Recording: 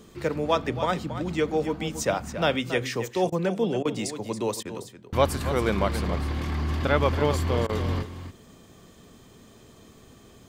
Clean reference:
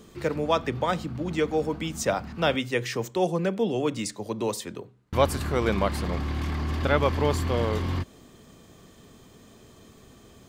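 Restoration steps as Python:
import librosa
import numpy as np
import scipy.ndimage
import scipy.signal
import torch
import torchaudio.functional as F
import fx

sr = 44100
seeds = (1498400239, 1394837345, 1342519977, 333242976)

y = fx.fix_interpolate(x, sr, at_s=(3.3, 3.83, 4.63, 7.67), length_ms=21.0)
y = fx.fix_echo_inverse(y, sr, delay_ms=277, level_db=-11.0)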